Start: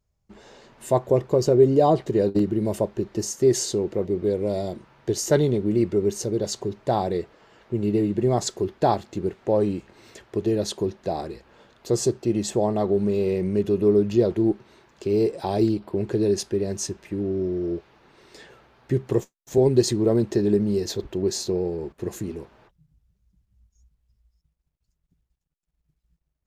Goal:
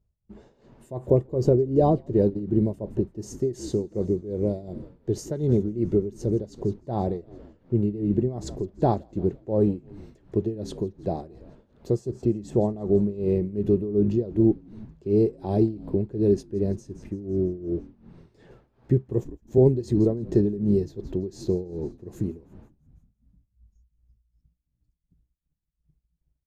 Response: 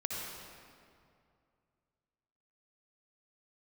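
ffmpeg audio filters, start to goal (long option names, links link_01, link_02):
-filter_complex "[0:a]tiltshelf=frequency=670:gain=9,asplit=7[link_01][link_02][link_03][link_04][link_05][link_06][link_07];[link_02]adelay=167,afreqshift=-59,volume=-19dB[link_08];[link_03]adelay=334,afreqshift=-118,volume=-23dB[link_09];[link_04]adelay=501,afreqshift=-177,volume=-27dB[link_10];[link_05]adelay=668,afreqshift=-236,volume=-31dB[link_11];[link_06]adelay=835,afreqshift=-295,volume=-35.1dB[link_12];[link_07]adelay=1002,afreqshift=-354,volume=-39.1dB[link_13];[link_01][link_08][link_09][link_10][link_11][link_12][link_13]amix=inputs=7:normalize=0,tremolo=f=2.7:d=0.84,volume=-3dB"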